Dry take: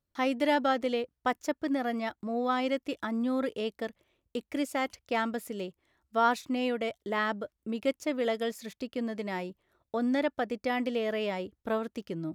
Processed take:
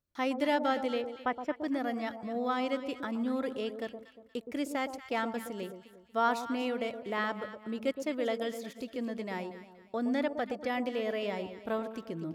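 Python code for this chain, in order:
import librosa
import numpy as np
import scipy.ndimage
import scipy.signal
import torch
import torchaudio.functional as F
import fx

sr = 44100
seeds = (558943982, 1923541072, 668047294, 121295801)

p1 = fx.savgol(x, sr, points=25, at=(1.01, 1.51), fade=0.02)
p2 = p1 + fx.echo_alternate(p1, sr, ms=118, hz=1000.0, feedback_pct=58, wet_db=-8.0, dry=0)
y = p2 * librosa.db_to_amplitude(-3.0)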